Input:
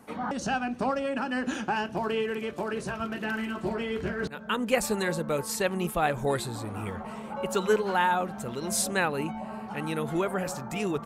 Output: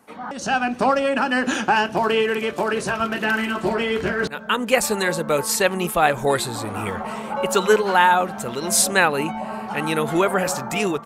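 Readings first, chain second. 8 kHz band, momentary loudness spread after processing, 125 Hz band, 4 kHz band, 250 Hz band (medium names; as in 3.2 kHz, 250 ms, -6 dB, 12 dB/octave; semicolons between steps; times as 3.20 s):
+10.5 dB, 10 LU, +4.0 dB, +10.5 dB, +6.0 dB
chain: bass shelf 390 Hz -5.5 dB; level rider gain up to 12 dB; bass shelf 150 Hz -4 dB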